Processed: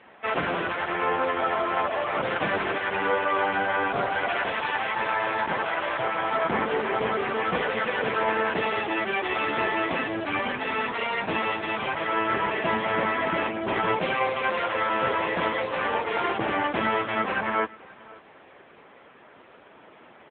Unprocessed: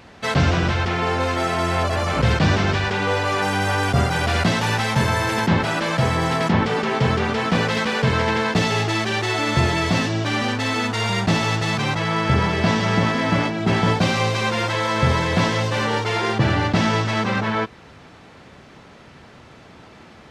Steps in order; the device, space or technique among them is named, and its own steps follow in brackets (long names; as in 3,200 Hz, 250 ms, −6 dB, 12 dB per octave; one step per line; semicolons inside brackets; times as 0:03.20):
0:04.42–0:06.31: dynamic equaliser 200 Hz, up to −7 dB, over −34 dBFS, Q 1
satellite phone (band-pass filter 340–3,100 Hz; single-tap delay 533 ms −22 dB; AMR narrowband 6.7 kbit/s 8,000 Hz)